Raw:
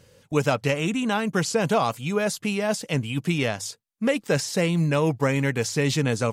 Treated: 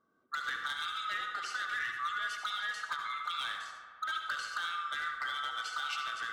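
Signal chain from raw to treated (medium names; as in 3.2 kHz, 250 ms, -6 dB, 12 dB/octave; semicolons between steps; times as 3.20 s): split-band scrambler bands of 1 kHz; band-stop 2.5 kHz, Q 7.5; de-hum 106.9 Hz, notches 34; compression 2.5:1, threshold -25 dBFS, peak gain reduction 6 dB; auto-wah 220–2700 Hz, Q 2.6, up, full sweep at -25 dBFS; hard clipper -30 dBFS, distortion -14 dB; filtered feedback delay 71 ms, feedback 84%, low-pass 4 kHz, level -11 dB; on a send at -6 dB: reverberation RT60 0.45 s, pre-delay 63 ms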